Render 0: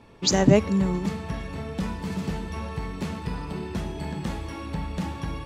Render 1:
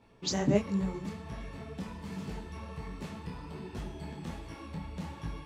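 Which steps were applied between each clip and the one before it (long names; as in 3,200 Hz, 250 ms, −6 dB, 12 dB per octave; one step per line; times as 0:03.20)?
micro pitch shift up and down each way 46 cents
level −6 dB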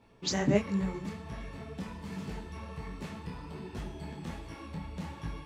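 dynamic equaliser 1,900 Hz, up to +5 dB, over −52 dBFS, Q 1.3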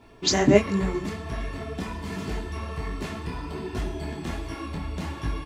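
comb filter 2.9 ms, depth 45%
level +9 dB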